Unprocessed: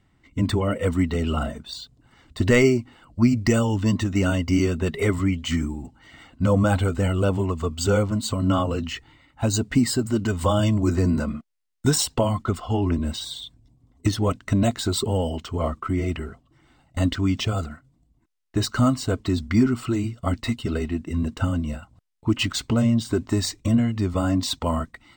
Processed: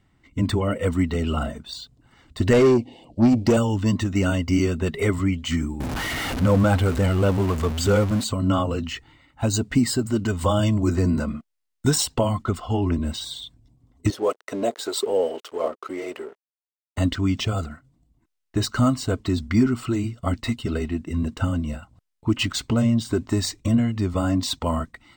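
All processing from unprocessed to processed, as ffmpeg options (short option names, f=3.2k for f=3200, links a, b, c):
-filter_complex "[0:a]asettb=1/sr,asplit=3[a][b][c];[a]atrim=end=2.534[d];[b]atrim=start=2.53:end=3.57,asetpts=PTS-STARTPTS,afade=t=in:d=0.004:c=qsin,afade=t=out:st=1.036:d=0.004:c=qsin,aeval=exprs='if(lt(val(0),0),0.708*val(0),val(0))':c=same,asuperstop=centerf=1400:order=4:qfactor=0.67,asplit=2[e][f];[f]highpass=f=720:p=1,volume=24dB,asoftclip=type=tanh:threshold=-7.5dB[g];[e][g]amix=inputs=2:normalize=0,lowpass=f=1.1k:p=1,volume=-6dB[h];[c]atrim=start=3.566[i];[d][h]acrossfade=d=0.004:c1=hsin:c2=qsin[j];[j][i]acrossfade=d=0.004:c1=qsin:c2=hsin,asettb=1/sr,asplit=3[k][l][m];[k]atrim=end=5.804[n];[l]atrim=start=5.8:end=8.24,asetpts=PTS-STARTPTS,afade=t=in:d=0.004:c=qsin,afade=t=out:st=2.436:d=0.004:c=qsin,aeval=exprs='val(0)+0.5*0.0501*sgn(val(0))':c=same,highshelf=f=5k:g=-5,acompressor=mode=upward:threshold=-23dB:ratio=2.5:attack=3.2:release=140:knee=2.83:detection=peak[o];[m]atrim=start=8.236[p];[n][o]acrossfade=d=0.004:c1=hsin:c2=qsin[q];[q][p]acrossfade=d=0.004:c1=qsin:c2=hsin,asettb=1/sr,asplit=3[r][s][t];[r]atrim=end=14.104[u];[s]atrim=start=14.1:end=16.98,asetpts=PTS-STARTPTS,afade=t=in:d=0.004:c=qsin,afade=t=out:st=2.876:d=0.004:c=qsin,acrossover=split=640[v][w];[v]aeval=exprs='val(0)*(1-0.5/2+0.5/2*cos(2*PI*1.8*n/s))':c=same[x];[w]aeval=exprs='val(0)*(1-0.5/2-0.5/2*cos(2*PI*1.8*n/s))':c=same[y];[x][y]amix=inputs=2:normalize=0,aeval=exprs='sgn(val(0))*max(abs(val(0))-0.00708,0)':c=same,highpass=f=440:t=q:w=2.9[z];[t]atrim=start=16.976[aa];[u][z]acrossfade=d=0.004:c1=hsin:c2=qsin[ab];[ab][aa]acrossfade=d=0.004:c1=qsin:c2=hsin"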